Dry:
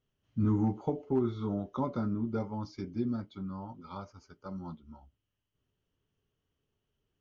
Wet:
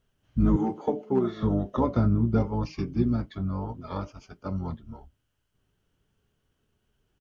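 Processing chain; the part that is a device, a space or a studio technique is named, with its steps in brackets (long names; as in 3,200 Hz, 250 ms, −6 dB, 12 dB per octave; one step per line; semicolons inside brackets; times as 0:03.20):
octave pedal (pitch-shifted copies added −12 semitones −2 dB)
0:00.56–0:01.43: high-pass filter 290 Hz 12 dB per octave
level +6.5 dB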